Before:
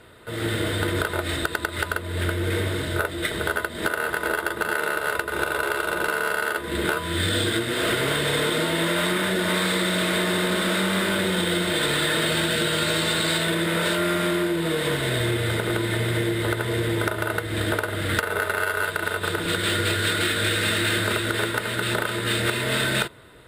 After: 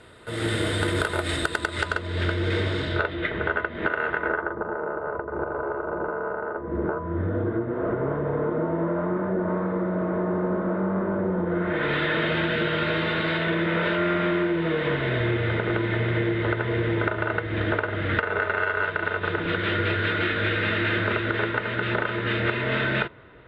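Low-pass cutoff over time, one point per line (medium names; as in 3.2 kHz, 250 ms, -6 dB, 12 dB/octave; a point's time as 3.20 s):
low-pass 24 dB/octave
1.46 s 10 kHz
2.19 s 5.8 kHz
2.80 s 5.8 kHz
3.31 s 2.6 kHz
4.12 s 2.6 kHz
4.63 s 1.1 kHz
11.44 s 1.1 kHz
11.94 s 2.8 kHz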